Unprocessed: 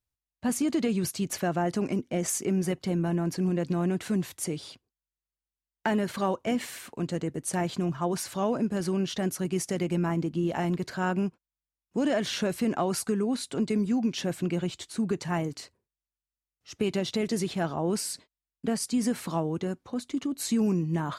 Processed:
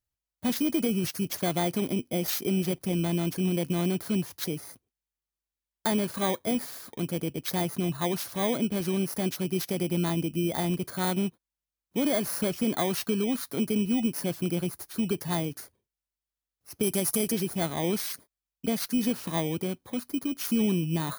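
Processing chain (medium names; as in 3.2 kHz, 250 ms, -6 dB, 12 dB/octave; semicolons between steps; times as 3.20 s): bit-reversed sample order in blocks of 16 samples; 16.83–17.32 s: peaking EQ 11 kHz +9.5 dB 1.8 oct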